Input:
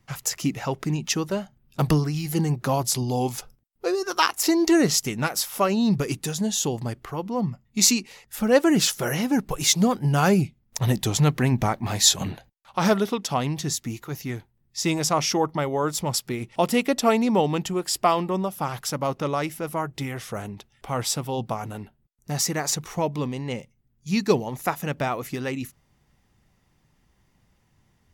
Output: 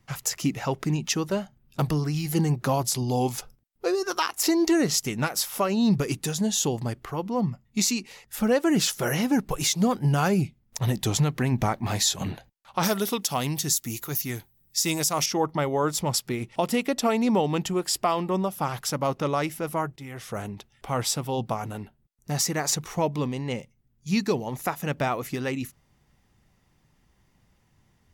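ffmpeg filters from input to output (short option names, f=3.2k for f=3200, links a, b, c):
-filter_complex "[0:a]asettb=1/sr,asplit=3[a][b][c];[a]atrim=end=12.834[d];[b]atrim=start=12.83:end=15.26,asetpts=PTS-STARTPTS,afade=t=in:d=0.004:c=qsin,afade=t=out:st=2.426:d=0.004:c=qsin,aemphasis=mode=production:type=75fm[e];[c]atrim=start=15.256[f];[d][e]acrossfade=d=0.004:c1=hsin:c2=qsin[g];[g][f]acrossfade=d=0.004:c1=qsin:c2=hsin,asplit=2[h][i];[h]atrim=end=19.96,asetpts=PTS-STARTPTS,afade=t=out:st=19.956:d=0.004:c=hsin:silence=0.16788[j];[i]atrim=start=19.96,asetpts=PTS-STARTPTS,afade=t=in:d=0.44:silence=0.16788[k];[j][k]concat=n=2:v=0:a=1,alimiter=limit=-13dB:level=0:latency=1:release=212"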